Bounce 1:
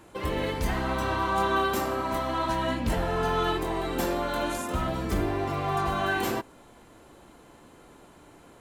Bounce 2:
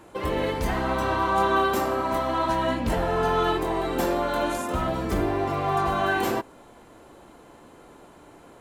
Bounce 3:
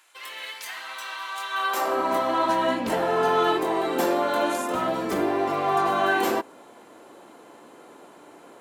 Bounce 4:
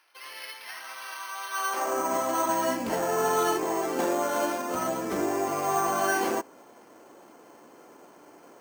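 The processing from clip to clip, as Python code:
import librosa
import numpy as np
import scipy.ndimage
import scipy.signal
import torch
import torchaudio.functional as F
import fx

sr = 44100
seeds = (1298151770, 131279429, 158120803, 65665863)

y1 = fx.peak_eq(x, sr, hz=620.0, db=4.5, octaves=2.7)
y2 = fx.filter_sweep_highpass(y1, sr, from_hz=2200.0, to_hz=260.0, start_s=1.5, end_s=2.02, q=0.78)
y2 = y2 * 10.0 ** (2.0 / 20.0)
y3 = np.repeat(scipy.signal.resample_poly(y2, 1, 6), 6)[:len(y2)]
y3 = y3 * 10.0 ** (-3.5 / 20.0)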